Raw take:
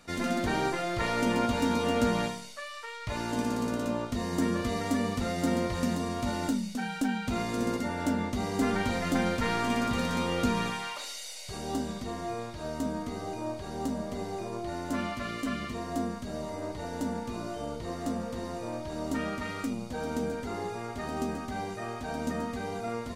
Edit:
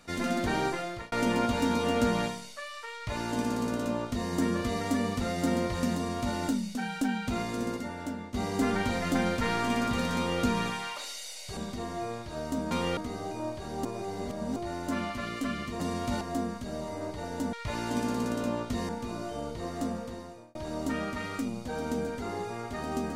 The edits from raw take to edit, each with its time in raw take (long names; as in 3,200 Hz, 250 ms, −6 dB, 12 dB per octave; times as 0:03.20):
0:00.56–0:01.12: fade out equal-power
0:02.95–0:04.31: duplicate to 0:17.14
0:05.95–0:06.36: duplicate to 0:15.82
0:07.26–0:08.34: fade out, to −11.5 dB
0:10.16–0:10.42: duplicate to 0:12.99
0:11.57–0:11.85: remove
0:13.87–0:14.58: reverse
0:18.14–0:18.80: fade out